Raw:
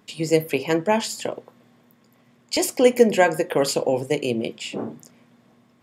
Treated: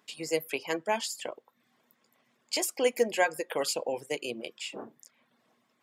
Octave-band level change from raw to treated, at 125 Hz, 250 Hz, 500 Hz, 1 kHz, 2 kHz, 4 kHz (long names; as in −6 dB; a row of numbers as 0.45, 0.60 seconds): −20.0, −15.0, −10.5, −8.0, −6.0, −5.5 decibels